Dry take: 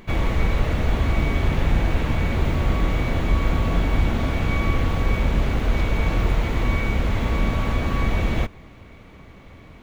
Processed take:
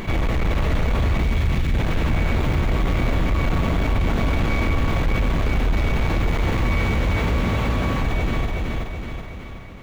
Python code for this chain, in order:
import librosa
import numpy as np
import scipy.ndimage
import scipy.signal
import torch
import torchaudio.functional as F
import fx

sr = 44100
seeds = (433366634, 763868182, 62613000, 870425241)

y = fx.fade_out_tail(x, sr, length_s=2.94)
y = fx.peak_eq(y, sr, hz=640.0, db=-15.0, octaves=1.8, at=(1.23, 1.74))
y = fx.highpass(y, sr, hz=50.0, slope=12, at=(6.62, 8.01))
y = 10.0 ** (-19.0 / 20.0) * np.tanh(y / 10.0 ** (-19.0 / 20.0))
y = fx.echo_feedback(y, sr, ms=375, feedback_pct=29, wet_db=-5)
y = fx.env_flatten(y, sr, amount_pct=50)
y = y * librosa.db_to_amplitude(1.0)